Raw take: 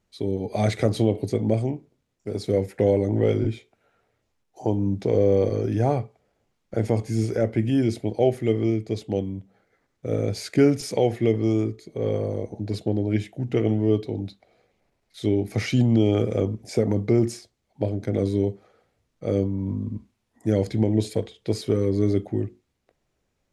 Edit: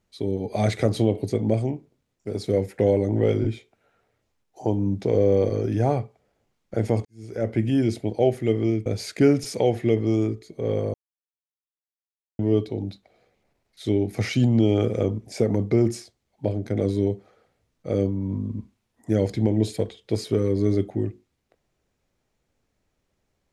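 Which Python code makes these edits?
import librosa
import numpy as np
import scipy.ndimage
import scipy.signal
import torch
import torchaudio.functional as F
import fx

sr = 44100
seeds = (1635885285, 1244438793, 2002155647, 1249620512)

y = fx.edit(x, sr, fx.fade_in_span(start_s=7.05, length_s=0.45, curve='qua'),
    fx.cut(start_s=8.86, length_s=1.37),
    fx.silence(start_s=12.31, length_s=1.45), tone=tone)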